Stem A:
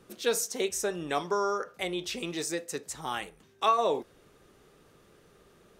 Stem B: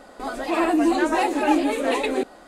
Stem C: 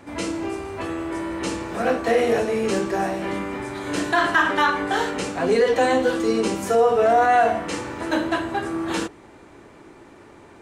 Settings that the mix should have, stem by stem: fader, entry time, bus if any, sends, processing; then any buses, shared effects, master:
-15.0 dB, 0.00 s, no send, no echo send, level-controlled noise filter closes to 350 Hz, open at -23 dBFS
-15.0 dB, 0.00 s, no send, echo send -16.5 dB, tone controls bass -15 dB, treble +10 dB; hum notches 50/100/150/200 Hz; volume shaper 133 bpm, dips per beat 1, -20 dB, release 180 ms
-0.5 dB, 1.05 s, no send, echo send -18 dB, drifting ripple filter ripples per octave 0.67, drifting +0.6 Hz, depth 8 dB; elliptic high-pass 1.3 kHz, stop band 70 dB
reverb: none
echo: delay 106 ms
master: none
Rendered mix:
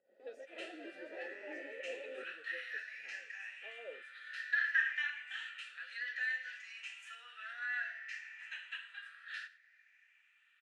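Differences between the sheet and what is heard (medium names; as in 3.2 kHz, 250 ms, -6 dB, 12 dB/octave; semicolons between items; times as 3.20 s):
stem B: missing tone controls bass -15 dB, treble +10 dB; stem C: entry 1.05 s -> 0.40 s; master: extra vowel filter e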